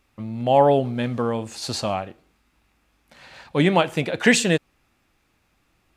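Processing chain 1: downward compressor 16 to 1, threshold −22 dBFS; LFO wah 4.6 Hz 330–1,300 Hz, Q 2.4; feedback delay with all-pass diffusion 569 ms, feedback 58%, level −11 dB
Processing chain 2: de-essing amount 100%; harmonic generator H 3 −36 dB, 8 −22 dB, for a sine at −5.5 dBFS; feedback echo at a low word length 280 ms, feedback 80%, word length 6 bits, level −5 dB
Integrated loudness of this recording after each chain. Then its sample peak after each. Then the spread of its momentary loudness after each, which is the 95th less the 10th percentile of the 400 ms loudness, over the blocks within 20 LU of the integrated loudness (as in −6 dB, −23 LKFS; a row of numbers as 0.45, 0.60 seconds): −37.0, −22.5 LKFS; −19.0, −6.0 dBFS; 16, 17 LU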